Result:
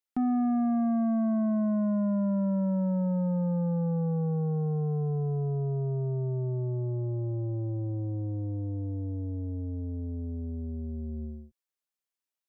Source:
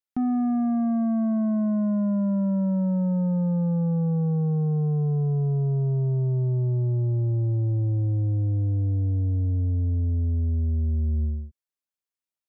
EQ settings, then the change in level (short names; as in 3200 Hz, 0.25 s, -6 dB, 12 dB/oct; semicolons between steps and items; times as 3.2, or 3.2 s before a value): bell 68 Hz -14 dB 1.9 oct; 0.0 dB